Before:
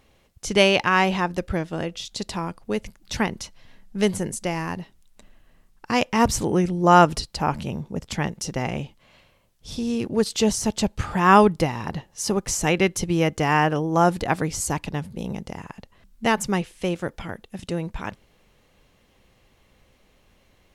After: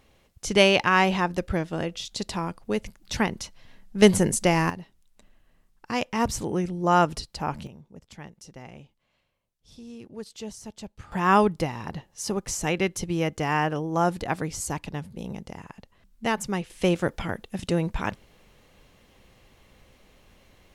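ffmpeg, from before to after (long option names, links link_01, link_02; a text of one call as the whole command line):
ffmpeg -i in.wav -af "asetnsamples=nb_out_samples=441:pad=0,asendcmd='4.02 volume volume 5.5dB;4.7 volume volume -6dB;7.67 volume volume -17dB;11.12 volume volume -5dB;16.7 volume volume 3dB',volume=-1dB" out.wav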